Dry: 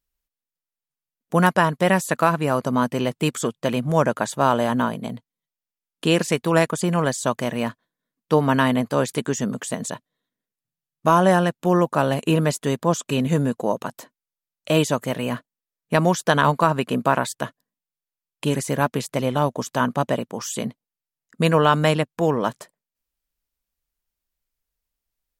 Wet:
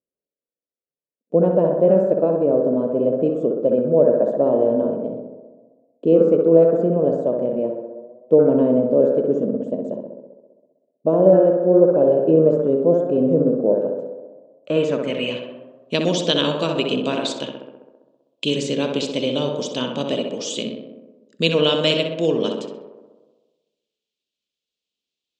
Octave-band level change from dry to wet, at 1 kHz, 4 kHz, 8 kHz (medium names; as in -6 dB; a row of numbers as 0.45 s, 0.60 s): -10.0 dB, +5.5 dB, no reading